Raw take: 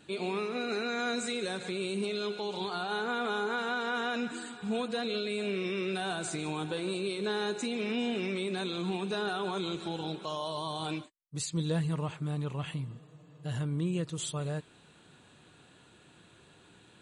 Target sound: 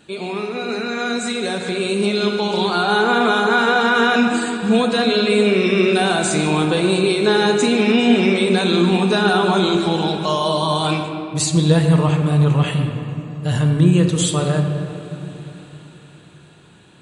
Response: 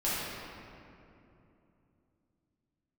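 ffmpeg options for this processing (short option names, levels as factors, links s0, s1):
-filter_complex "[0:a]dynaudnorm=f=170:g=21:m=2.66,asplit=2[s0][s1];[1:a]atrim=start_sample=2205[s2];[s1][s2]afir=irnorm=-1:irlink=0,volume=0.282[s3];[s0][s3]amix=inputs=2:normalize=0,volume=1.78"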